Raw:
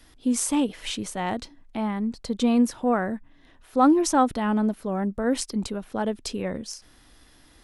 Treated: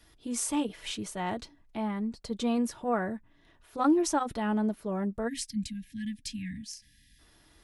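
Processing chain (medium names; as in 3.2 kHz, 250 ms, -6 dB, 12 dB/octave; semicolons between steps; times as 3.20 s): spectral selection erased 5.28–7.19 s, 290–1600 Hz; comb of notches 260 Hz; trim -4 dB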